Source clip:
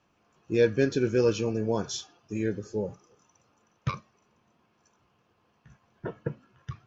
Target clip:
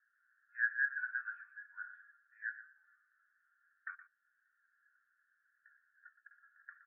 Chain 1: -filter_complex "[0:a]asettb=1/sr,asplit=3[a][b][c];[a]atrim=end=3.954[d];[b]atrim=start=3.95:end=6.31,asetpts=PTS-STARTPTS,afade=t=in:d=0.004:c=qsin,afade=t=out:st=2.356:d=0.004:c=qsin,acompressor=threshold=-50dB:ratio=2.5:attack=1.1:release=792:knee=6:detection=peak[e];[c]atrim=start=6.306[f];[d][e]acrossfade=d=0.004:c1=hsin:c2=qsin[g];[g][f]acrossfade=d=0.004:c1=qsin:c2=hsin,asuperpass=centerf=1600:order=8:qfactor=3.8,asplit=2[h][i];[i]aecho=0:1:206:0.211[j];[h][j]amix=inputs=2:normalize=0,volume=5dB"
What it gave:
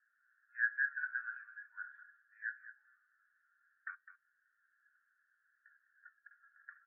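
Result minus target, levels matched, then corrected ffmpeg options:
echo 87 ms late
-filter_complex "[0:a]asettb=1/sr,asplit=3[a][b][c];[a]atrim=end=3.954[d];[b]atrim=start=3.95:end=6.31,asetpts=PTS-STARTPTS,afade=t=in:d=0.004:c=qsin,afade=t=out:st=2.356:d=0.004:c=qsin,acompressor=threshold=-50dB:ratio=2.5:attack=1.1:release=792:knee=6:detection=peak[e];[c]atrim=start=6.306[f];[d][e]acrossfade=d=0.004:c1=hsin:c2=qsin[g];[g][f]acrossfade=d=0.004:c1=qsin:c2=hsin,asuperpass=centerf=1600:order=8:qfactor=3.8,asplit=2[h][i];[i]aecho=0:1:119:0.211[j];[h][j]amix=inputs=2:normalize=0,volume=5dB"

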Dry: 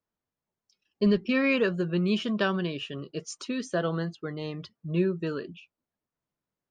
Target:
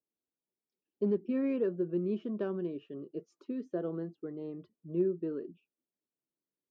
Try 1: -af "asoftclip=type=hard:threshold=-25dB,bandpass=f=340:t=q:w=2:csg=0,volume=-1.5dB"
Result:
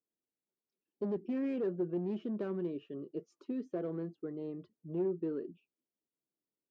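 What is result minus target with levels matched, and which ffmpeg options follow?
hard clip: distortion +16 dB
-af "asoftclip=type=hard:threshold=-17dB,bandpass=f=340:t=q:w=2:csg=0,volume=-1.5dB"

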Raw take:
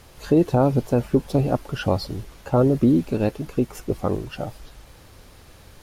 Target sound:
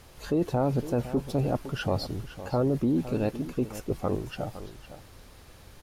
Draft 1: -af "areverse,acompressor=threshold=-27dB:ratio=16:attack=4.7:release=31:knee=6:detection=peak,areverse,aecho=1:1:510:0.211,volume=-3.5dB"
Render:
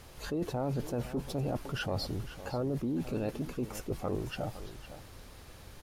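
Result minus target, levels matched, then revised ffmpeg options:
compressor: peak gain reduction +8.5 dB
-af "areverse,acompressor=threshold=-18dB:ratio=16:attack=4.7:release=31:knee=6:detection=peak,areverse,aecho=1:1:510:0.211,volume=-3.5dB"

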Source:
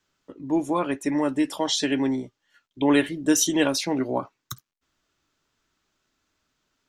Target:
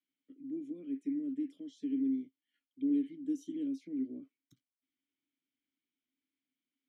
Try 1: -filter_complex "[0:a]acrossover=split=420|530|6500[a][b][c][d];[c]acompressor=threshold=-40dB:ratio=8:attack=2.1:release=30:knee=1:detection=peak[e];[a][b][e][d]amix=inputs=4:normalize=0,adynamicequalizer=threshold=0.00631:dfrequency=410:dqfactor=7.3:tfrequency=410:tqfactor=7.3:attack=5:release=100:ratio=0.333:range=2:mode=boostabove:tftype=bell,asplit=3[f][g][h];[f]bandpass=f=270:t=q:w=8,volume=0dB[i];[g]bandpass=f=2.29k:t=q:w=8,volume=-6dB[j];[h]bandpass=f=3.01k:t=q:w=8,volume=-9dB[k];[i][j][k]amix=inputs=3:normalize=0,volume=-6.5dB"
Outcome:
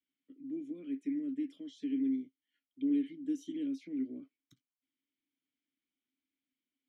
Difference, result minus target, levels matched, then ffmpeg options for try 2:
compressor: peak gain reduction -8.5 dB
-filter_complex "[0:a]acrossover=split=420|530|6500[a][b][c][d];[c]acompressor=threshold=-49.5dB:ratio=8:attack=2.1:release=30:knee=1:detection=peak[e];[a][b][e][d]amix=inputs=4:normalize=0,adynamicequalizer=threshold=0.00631:dfrequency=410:dqfactor=7.3:tfrequency=410:tqfactor=7.3:attack=5:release=100:ratio=0.333:range=2:mode=boostabove:tftype=bell,asplit=3[f][g][h];[f]bandpass=f=270:t=q:w=8,volume=0dB[i];[g]bandpass=f=2.29k:t=q:w=8,volume=-6dB[j];[h]bandpass=f=3.01k:t=q:w=8,volume=-9dB[k];[i][j][k]amix=inputs=3:normalize=0,volume=-6.5dB"

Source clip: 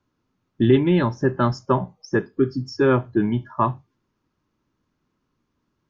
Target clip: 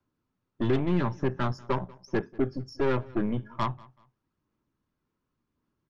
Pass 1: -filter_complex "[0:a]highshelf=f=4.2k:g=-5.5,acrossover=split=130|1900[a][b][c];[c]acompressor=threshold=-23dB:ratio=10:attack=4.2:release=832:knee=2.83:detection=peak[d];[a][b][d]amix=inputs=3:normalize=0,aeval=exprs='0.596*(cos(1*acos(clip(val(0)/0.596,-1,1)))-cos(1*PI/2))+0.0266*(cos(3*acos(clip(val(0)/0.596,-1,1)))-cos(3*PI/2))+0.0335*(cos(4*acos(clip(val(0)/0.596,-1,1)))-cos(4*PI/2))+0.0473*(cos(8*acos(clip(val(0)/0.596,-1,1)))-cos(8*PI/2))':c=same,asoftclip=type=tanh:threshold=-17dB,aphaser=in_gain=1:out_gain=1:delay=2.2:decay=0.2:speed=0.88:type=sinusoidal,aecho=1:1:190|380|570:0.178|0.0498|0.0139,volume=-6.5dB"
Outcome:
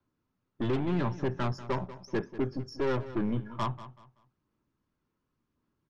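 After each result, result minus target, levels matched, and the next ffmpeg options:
echo-to-direct +8.5 dB; soft clip: distortion +8 dB
-filter_complex "[0:a]highshelf=f=4.2k:g=-5.5,acrossover=split=130|1900[a][b][c];[c]acompressor=threshold=-23dB:ratio=10:attack=4.2:release=832:knee=2.83:detection=peak[d];[a][b][d]amix=inputs=3:normalize=0,aeval=exprs='0.596*(cos(1*acos(clip(val(0)/0.596,-1,1)))-cos(1*PI/2))+0.0266*(cos(3*acos(clip(val(0)/0.596,-1,1)))-cos(3*PI/2))+0.0335*(cos(4*acos(clip(val(0)/0.596,-1,1)))-cos(4*PI/2))+0.0473*(cos(8*acos(clip(val(0)/0.596,-1,1)))-cos(8*PI/2))':c=same,asoftclip=type=tanh:threshold=-17dB,aphaser=in_gain=1:out_gain=1:delay=2.2:decay=0.2:speed=0.88:type=sinusoidal,aecho=1:1:190|380:0.0668|0.0187,volume=-6.5dB"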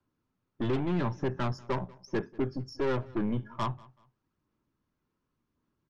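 soft clip: distortion +8 dB
-filter_complex "[0:a]highshelf=f=4.2k:g=-5.5,acrossover=split=130|1900[a][b][c];[c]acompressor=threshold=-23dB:ratio=10:attack=4.2:release=832:knee=2.83:detection=peak[d];[a][b][d]amix=inputs=3:normalize=0,aeval=exprs='0.596*(cos(1*acos(clip(val(0)/0.596,-1,1)))-cos(1*PI/2))+0.0266*(cos(3*acos(clip(val(0)/0.596,-1,1)))-cos(3*PI/2))+0.0335*(cos(4*acos(clip(val(0)/0.596,-1,1)))-cos(4*PI/2))+0.0473*(cos(8*acos(clip(val(0)/0.596,-1,1)))-cos(8*PI/2))':c=same,asoftclip=type=tanh:threshold=-10dB,aphaser=in_gain=1:out_gain=1:delay=2.2:decay=0.2:speed=0.88:type=sinusoidal,aecho=1:1:190|380:0.0668|0.0187,volume=-6.5dB"

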